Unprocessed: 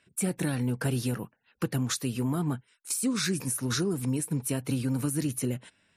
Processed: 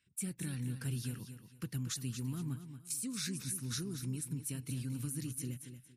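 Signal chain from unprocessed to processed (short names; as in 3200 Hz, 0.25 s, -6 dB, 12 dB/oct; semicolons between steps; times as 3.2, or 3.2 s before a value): passive tone stack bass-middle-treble 6-0-2; feedback echo 0.231 s, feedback 27%, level -10 dB; gain +6.5 dB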